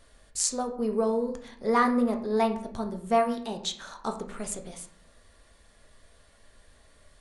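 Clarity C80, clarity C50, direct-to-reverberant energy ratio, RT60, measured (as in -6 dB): 13.5 dB, 10.0 dB, 4.0 dB, 0.60 s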